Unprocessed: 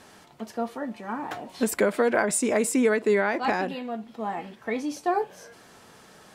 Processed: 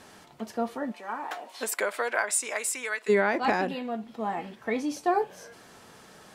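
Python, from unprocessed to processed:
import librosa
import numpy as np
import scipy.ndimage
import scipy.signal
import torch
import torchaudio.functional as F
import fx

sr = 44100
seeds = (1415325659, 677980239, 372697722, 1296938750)

y = fx.highpass(x, sr, hz=fx.line((0.91, 440.0), (3.08, 1400.0)), slope=12, at=(0.91, 3.08), fade=0.02)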